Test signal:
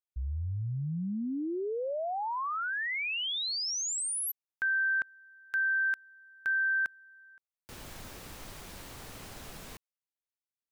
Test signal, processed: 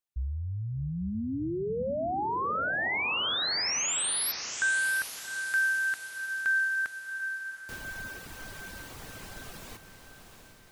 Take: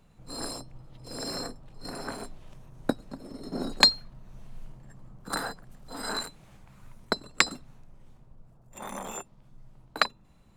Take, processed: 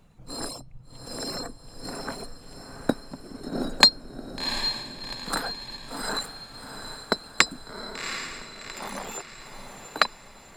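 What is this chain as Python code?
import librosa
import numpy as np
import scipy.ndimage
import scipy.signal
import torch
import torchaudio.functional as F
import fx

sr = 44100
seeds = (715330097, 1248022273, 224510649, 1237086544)

p1 = fx.dereverb_blind(x, sr, rt60_s=0.82)
p2 = p1 + fx.echo_diffused(p1, sr, ms=745, feedback_pct=49, wet_db=-8.0, dry=0)
y = F.gain(torch.from_numpy(p2), 3.0).numpy()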